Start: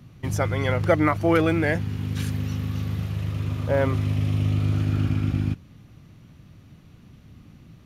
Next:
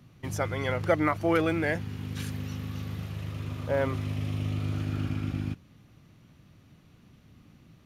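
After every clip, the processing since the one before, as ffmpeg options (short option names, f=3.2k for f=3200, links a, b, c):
-af "lowshelf=f=180:g=-6,volume=-4dB"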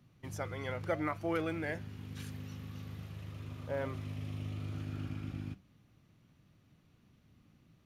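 -af "flanger=delay=5.4:depth=4.9:regen=-88:speed=0.76:shape=triangular,volume=-5dB"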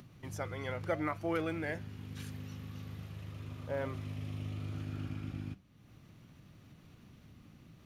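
-af "acompressor=mode=upward:threshold=-47dB:ratio=2.5"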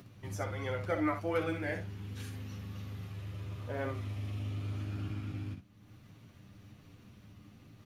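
-filter_complex "[0:a]asplit=2[a][b];[b]aecho=0:1:10|62:0.631|0.473[c];[a][c]amix=inputs=2:normalize=0,flanger=delay=7.3:depth=2.9:regen=-55:speed=1.3:shape=sinusoidal,volume=3.5dB"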